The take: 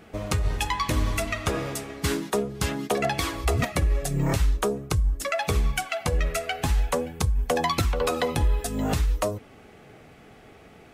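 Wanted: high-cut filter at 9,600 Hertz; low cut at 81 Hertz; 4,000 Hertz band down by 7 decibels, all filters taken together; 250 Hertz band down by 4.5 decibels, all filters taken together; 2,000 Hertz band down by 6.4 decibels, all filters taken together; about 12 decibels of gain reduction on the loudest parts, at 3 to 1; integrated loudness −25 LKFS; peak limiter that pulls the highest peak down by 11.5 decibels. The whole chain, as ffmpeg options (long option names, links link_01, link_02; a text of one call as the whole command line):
ffmpeg -i in.wav -af "highpass=81,lowpass=9600,equalizer=frequency=250:width_type=o:gain=-6,equalizer=frequency=2000:width_type=o:gain=-6,equalizer=frequency=4000:width_type=o:gain=-7,acompressor=threshold=-40dB:ratio=3,volume=20dB,alimiter=limit=-15dB:level=0:latency=1" out.wav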